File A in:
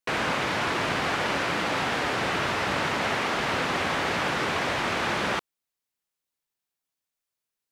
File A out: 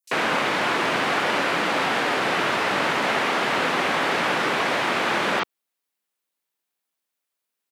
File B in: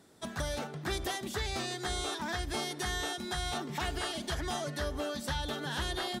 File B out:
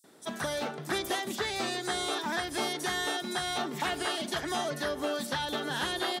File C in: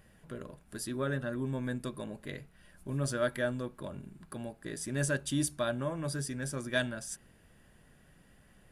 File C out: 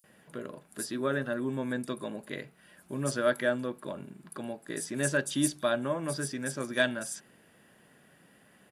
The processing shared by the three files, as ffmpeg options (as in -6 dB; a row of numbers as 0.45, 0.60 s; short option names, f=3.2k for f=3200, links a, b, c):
-filter_complex "[0:a]highpass=200,acrossover=split=6000[a][b];[a]adelay=40[c];[c][b]amix=inputs=2:normalize=0,volume=4.5dB"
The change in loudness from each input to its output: +4.0, +3.5, +3.0 LU